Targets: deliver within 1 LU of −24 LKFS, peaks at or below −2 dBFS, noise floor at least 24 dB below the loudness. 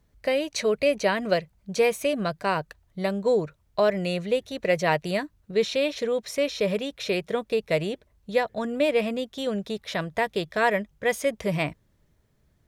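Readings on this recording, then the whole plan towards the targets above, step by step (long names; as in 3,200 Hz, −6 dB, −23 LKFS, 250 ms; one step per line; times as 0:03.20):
integrated loudness −26.5 LKFS; sample peak −9.0 dBFS; target loudness −24.0 LKFS
→ level +2.5 dB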